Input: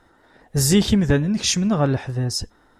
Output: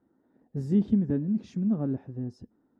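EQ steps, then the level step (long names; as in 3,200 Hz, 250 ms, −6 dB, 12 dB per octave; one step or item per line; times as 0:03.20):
resonant band-pass 240 Hz, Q 2.1
−4.0 dB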